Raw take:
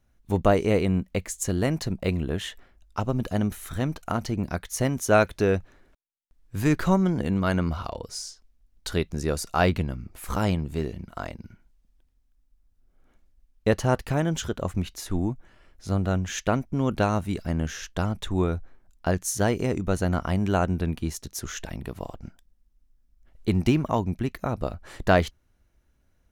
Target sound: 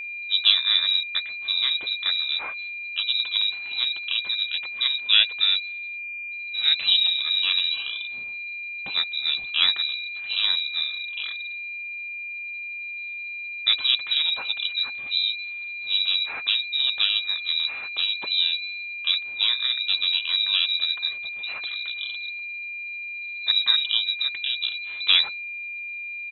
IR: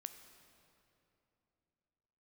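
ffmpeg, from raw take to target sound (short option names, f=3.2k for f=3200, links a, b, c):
-filter_complex "[0:a]asplit=2[a][b];[b]asetrate=37084,aresample=44100,atempo=1.18921,volume=-4dB[c];[a][c]amix=inputs=2:normalize=0,lowpass=f=3.4k:t=q:w=0.5098,lowpass=f=3.4k:t=q:w=0.6013,lowpass=f=3.4k:t=q:w=0.9,lowpass=f=3.4k:t=q:w=2.563,afreqshift=-4000,aeval=exprs='val(0)+0.0316*sin(2*PI*2400*n/s)':c=same,volume=-1dB"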